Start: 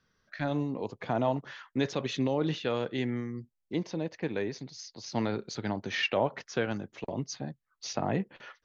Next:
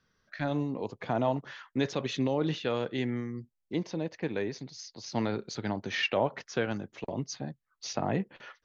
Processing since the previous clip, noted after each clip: nothing audible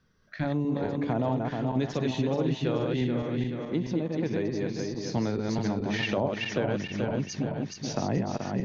regenerating reverse delay 0.215 s, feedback 65%, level -3 dB; low shelf 460 Hz +8.5 dB; compressor 2:1, threshold -27 dBFS, peak gain reduction 6.5 dB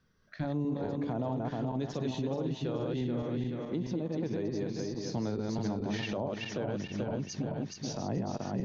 dynamic EQ 2100 Hz, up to -7 dB, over -50 dBFS, Q 1.3; limiter -21.5 dBFS, peak gain reduction 7 dB; gain -3 dB

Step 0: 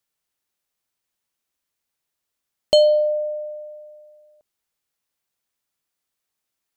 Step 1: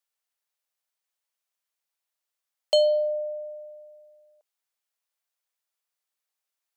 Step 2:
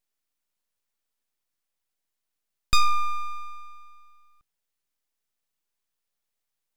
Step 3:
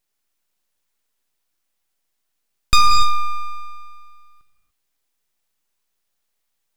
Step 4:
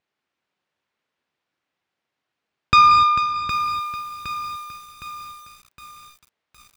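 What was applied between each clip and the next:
HPF 500 Hz 24 dB/oct; gain -5 dB
full-wave rectifier; gain +3.5 dB
non-linear reverb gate 0.31 s flat, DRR 3.5 dB; gain +6.5 dB
BPF 100–2800 Hz; echo 0.445 s -11 dB; lo-fi delay 0.763 s, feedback 55%, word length 7-bit, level -9 dB; gain +4 dB

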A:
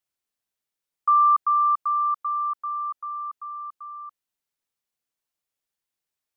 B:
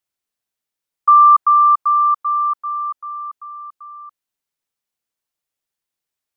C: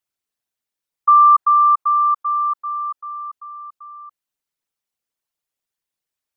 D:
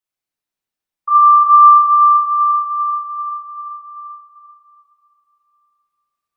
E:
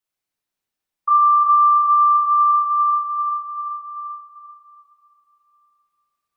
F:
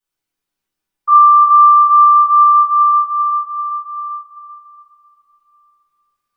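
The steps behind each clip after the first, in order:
dynamic EQ 1100 Hz, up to +7 dB, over -32 dBFS, Q 1.4; gain +2 dB
formant sharpening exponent 1.5; gain -1.5 dB
shoebox room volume 220 m³, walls hard, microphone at 1 m; gain -6 dB
compressor 6:1, threshold -14 dBFS, peak gain reduction 10 dB; gain +1.5 dB
shoebox room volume 31 m³, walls mixed, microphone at 1.1 m; gain -2.5 dB

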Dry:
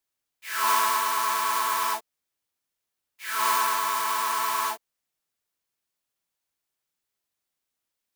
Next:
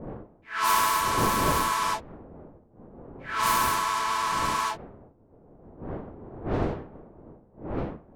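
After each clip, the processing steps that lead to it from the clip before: wind noise 460 Hz -36 dBFS; low-pass opened by the level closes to 770 Hz, open at -20 dBFS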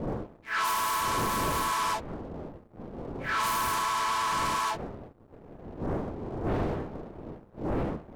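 compressor 12:1, threshold -29 dBFS, peak gain reduction 11.5 dB; sample leveller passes 2; gain -1 dB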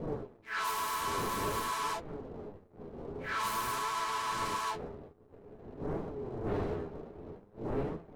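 flange 0.5 Hz, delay 5.8 ms, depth 7.6 ms, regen +54%; small resonant body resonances 420/4000 Hz, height 10 dB, ringing for 95 ms; gain -2 dB

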